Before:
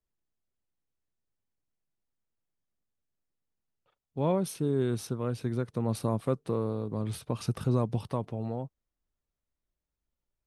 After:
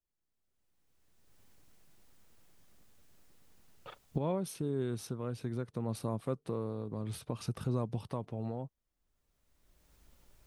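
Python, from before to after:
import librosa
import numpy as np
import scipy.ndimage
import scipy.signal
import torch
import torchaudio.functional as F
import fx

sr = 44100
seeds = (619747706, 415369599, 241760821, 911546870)

y = fx.recorder_agc(x, sr, target_db=-22.0, rise_db_per_s=21.0, max_gain_db=30)
y = y * 10.0 ** (-6.5 / 20.0)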